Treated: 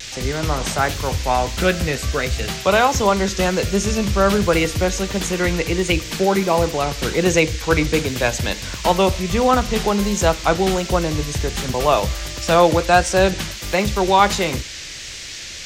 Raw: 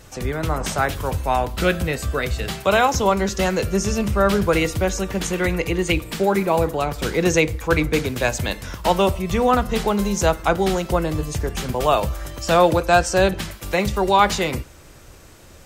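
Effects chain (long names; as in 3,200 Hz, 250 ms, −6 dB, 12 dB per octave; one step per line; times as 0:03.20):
noise in a band 1,700–7,000 Hz −35 dBFS
pitch vibrato 1.4 Hz 37 cents
level +1.5 dB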